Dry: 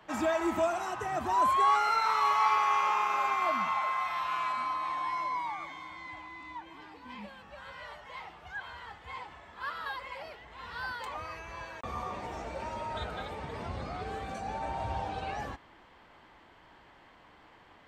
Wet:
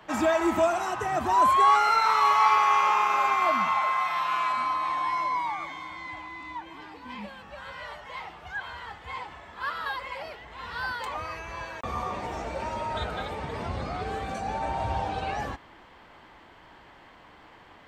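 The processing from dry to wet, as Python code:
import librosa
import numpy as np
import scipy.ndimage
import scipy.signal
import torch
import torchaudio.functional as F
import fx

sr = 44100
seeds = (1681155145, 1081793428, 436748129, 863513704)

y = fx.highpass(x, sr, hz=fx.line((3.98, 76.0), (4.49, 170.0)), slope=24, at=(3.98, 4.49), fade=0.02)
y = y * 10.0 ** (5.5 / 20.0)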